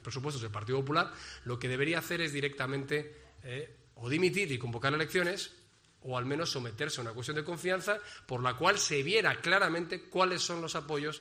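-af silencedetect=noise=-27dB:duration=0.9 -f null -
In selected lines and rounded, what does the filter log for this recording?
silence_start: 2.98
silence_end: 4.11 | silence_duration: 1.13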